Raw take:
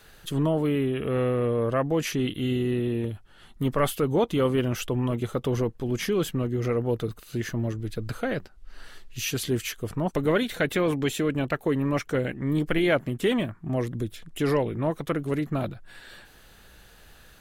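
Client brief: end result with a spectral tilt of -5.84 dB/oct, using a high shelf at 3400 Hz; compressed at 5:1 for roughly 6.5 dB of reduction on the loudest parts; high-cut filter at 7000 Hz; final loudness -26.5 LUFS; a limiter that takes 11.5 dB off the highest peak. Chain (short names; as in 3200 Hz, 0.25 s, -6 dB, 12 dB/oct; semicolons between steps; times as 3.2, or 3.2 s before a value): LPF 7000 Hz; high shelf 3400 Hz -5 dB; compressor 5:1, threshold -26 dBFS; gain +10 dB; limiter -17 dBFS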